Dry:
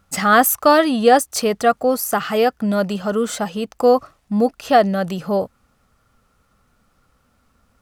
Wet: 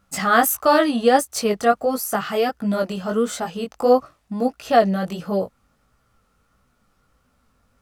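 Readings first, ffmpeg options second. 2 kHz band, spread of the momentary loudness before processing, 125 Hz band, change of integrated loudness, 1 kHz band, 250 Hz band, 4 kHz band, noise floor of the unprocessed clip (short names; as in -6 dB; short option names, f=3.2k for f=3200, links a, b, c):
-3.0 dB, 9 LU, -2.5 dB, -2.5 dB, -3.0 dB, -3.0 dB, -3.0 dB, -63 dBFS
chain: -af "flanger=delay=15.5:depth=6.1:speed=1.5"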